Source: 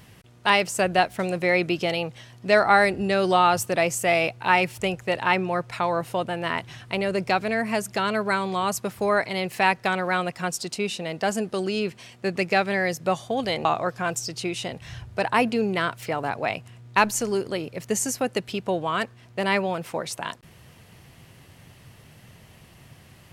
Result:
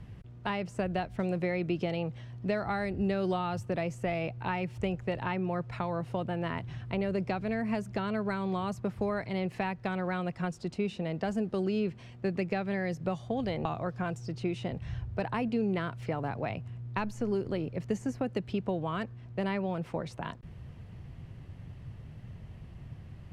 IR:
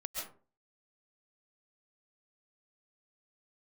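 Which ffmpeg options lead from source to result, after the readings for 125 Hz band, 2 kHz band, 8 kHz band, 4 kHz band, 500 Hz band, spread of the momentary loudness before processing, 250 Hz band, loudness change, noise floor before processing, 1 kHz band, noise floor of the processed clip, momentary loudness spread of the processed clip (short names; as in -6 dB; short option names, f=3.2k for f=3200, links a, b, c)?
-0.5 dB, -14.5 dB, under -20 dB, -15.5 dB, -8.5 dB, 9 LU, -3.0 dB, -9.0 dB, -51 dBFS, -13.0 dB, -49 dBFS, 15 LU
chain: -filter_complex "[0:a]acrossover=split=180|2700[a][b][c];[a]acompressor=threshold=-42dB:ratio=4[d];[b]acompressor=threshold=-26dB:ratio=4[e];[c]acompressor=threshold=-35dB:ratio=4[f];[d][e][f]amix=inputs=3:normalize=0,aemphasis=mode=reproduction:type=riaa,volume=-6.5dB"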